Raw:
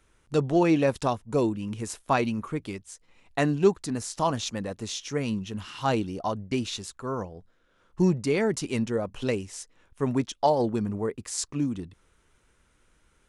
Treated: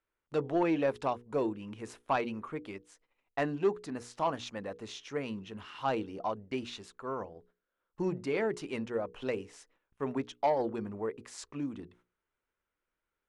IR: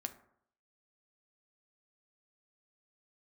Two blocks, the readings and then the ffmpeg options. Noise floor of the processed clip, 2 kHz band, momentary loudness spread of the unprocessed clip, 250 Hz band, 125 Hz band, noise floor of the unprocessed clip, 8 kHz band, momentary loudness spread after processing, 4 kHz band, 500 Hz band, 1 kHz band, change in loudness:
under -85 dBFS, -5.5 dB, 12 LU, -9.0 dB, -13.0 dB, -66 dBFS, -16.0 dB, 14 LU, -9.5 dB, -6.0 dB, -5.0 dB, -7.0 dB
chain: -af "agate=range=0.178:threshold=0.002:ratio=16:detection=peak,bass=f=250:g=-10,treble=f=4000:g=-14,bandreject=f=60:t=h:w=6,bandreject=f=120:t=h:w=6,bandreject=f=180:t=h:w=6,bandreject=f=240:t=h:w=6,bandreject=f=300:t=h:w=6,bandreject=f=360:t=h:w=6,bandreject=f=420:t=h:w=6,bandreject=f=480:t=h:w=6,asoftclip=type=tanh:threshold=0.168,volume=0.668"

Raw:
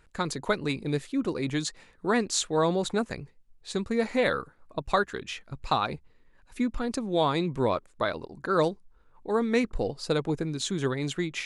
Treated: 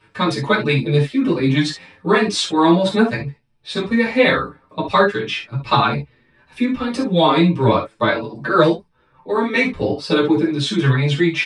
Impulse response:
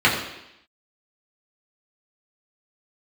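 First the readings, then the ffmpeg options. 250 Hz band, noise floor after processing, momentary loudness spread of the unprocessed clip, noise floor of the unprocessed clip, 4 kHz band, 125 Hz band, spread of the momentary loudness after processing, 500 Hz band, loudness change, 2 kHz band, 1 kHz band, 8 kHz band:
+12.0 dB, -59 dBFS, 11 LU, -61 dBFS, +11.5 dB, +14.0 dB, 9 LU, +9.5 dB, +11.0 dB, +13.0 dB, +11.0 dB, +1.0 dB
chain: -filter_complex "[1:a]atrim=start_sample=2205,atrim=end_sample=4410,asetrate=52920,aresample=44100[s0];[0:a][s0]afir=irnorm=-1:irlink=0,asplit=2[s1][s2];[s2]adelay=6.9,afreqshift=0.39[s3];[s1][s3]amix=inputs=2:normalize=1,volume=0.631"

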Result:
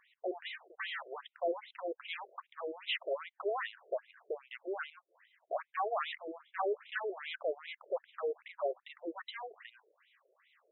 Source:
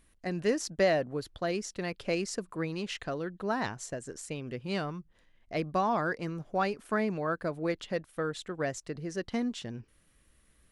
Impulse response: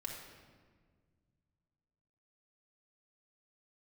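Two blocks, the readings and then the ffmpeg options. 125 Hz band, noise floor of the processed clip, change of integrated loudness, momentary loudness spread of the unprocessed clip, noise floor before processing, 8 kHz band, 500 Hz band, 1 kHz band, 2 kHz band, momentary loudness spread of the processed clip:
under -40 dB, -85 dBFS, -6.5 dB, 10 LU, -67 dBFS, under -35 dB, -5.5 dB, -5.5 dB, -5.0 dB, 9 LU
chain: -af "aeval=exprs='(tanh(63.1*val(0)+0.15)-tanh(0.15))/63.1':c=same,afftfilt=real='re*between(b*sr/1024,470*pow(2900/470,0.5+0.5*sin(2*PI*2.5*pts/sr))/1.41,470*pow(2900/470,0.5+0.5*sin(2*PI*2.5*pts/sr))*1.41)':imag='im*between(b*sr/1024,470*pow(2900/470,0.5+0.5*sin(2*PI*2.5*pts/sr))/1.41,470*pow(2900/470,0.5+0.5*sin(2*PI*2.5*pts/sr))*1.41)':win_size=1024:overlap=0.75,volume=2.82"

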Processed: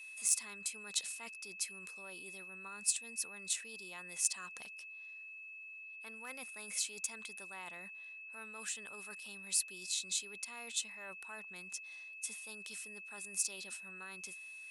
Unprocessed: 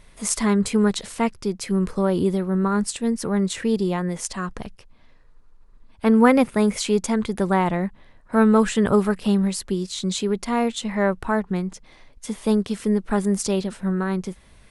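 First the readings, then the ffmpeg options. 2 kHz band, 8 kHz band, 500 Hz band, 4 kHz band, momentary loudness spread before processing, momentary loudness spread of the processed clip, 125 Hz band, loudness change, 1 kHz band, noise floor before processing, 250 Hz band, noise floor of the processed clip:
-11.5 dB, -4.5 dB, -34.0 dB, -9.5 dB, 10 LU, 13 LU, under -35 dB, -17.5 dB, -27.5 dB, -51 dBFS, -39.5 dB, -51 dBFS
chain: -af "aeval=exprs='0.75*(cos(1*acos(clip(val(0)/0.75,-1,1)))-cos(1*PI/2))+0.0422*(cos(4*acos(clip(val(0)/0.75,-1,1)))-cos(4*PI/2))+0.00841*(cos(6*acos(clip(val(0)/0.75,-1,1)))-cos(6*PI/2))':c=same,areverse,acompressor=threshold=0.0501:ratio=10,areverse,aeval=exprs='val(0)+0.0112*sin(2*PI*2600*n/s)':c=same,aderivative"

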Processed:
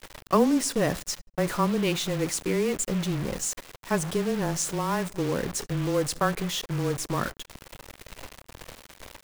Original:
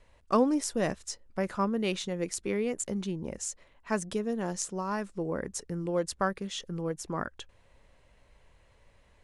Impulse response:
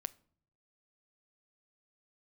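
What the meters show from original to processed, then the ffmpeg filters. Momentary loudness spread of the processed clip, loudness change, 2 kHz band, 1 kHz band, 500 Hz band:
21 LU, +5.0 dB, +5.5 dB, +4.0 dB, +4.0 dB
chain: -filter_complex "[0:a]aeval=exprs='val(0)+0.5*0.0211*sgn(val(0))':c=same,agate=range=0.501:threshold=0.0178:ratio=16:detection=peak,afreqshift=-18,asplit=2[s0][s1];[1:a]atrim=start_sample=2205[s2];[s1][s2]afir=irnorm=-1:irlink=0,volume=2[s3];[s0][s3]amix=inputs=2:normalize=0,acrusher=bits=4:mix=0:aa=0.5,volume=0.531"

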